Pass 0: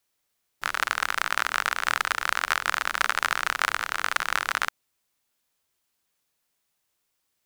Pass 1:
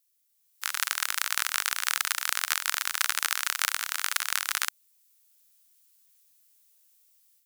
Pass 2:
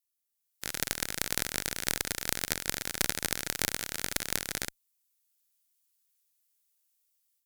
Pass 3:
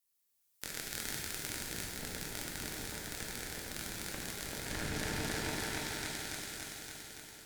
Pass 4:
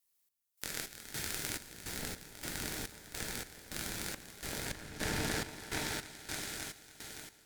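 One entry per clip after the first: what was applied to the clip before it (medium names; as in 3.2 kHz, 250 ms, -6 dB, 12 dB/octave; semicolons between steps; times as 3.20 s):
differentiator; level rider gain up to 9 dB; trim +1 dB
bass shelf 290 Hz +11 dB; Chebyshev shaper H 2 -9 dB, 3 -17 dB, 4 -8 dB, 6 -8 dB, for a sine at -0.5 dBFS; trim -6 dB
delay with an opening low-pass 284 ms, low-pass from 200 Hz, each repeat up 1 oct, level 0 dB; compressor with a negative ratio -42 dBFS, ratio -1; pitch-shifted reverb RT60 1.6 s, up +12 st, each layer -8 dB, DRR -1.5 dB; trim -4 dB
trance gate "xx..xx..x" 105 bpm -12 dB; trim +2 dB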